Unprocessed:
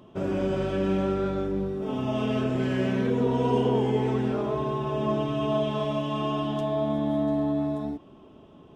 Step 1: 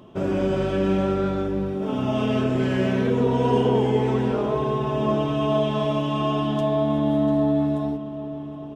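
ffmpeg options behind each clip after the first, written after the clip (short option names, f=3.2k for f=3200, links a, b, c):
-filter_complex "[0:a]asplit=2[a][b];[b]adelay=775,lowpass=f=3k:p=1,volume=-13.5dB,asplit=2[c][d];[d]adelay=775,lowpass=f=3k:p=1,volume=0.51,asplit=2[e][f];[f]adelay=775,lowpass=f=3k:p=1,volume=0.51,asplit=2[g][h];[h]adelay=775,lowpass=f=3k:p=1,volume=0.51,asplit=2[i][j];[j]adelay=775,lowpass=f=3k:p=1,volume=0.51[k];[a][c][e][g][i][k]amix=inputs=6:normalize=0,volume=4dB"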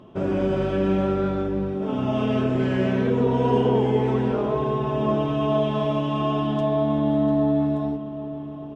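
-af "lowpass=f=3.3k:p=1"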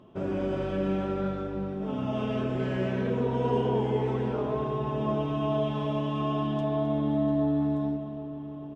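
-filter_complex "[0:a]asplit=2[a][b];[b]adelay=262.4,volume=-9dB,highshelf=f=4k:g=-5.9[c];[a][c]amix=inputs=2:normalize=0,volume=-6.5dB"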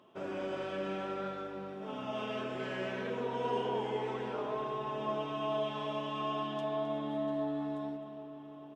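-af "highpass=f=930:p=1"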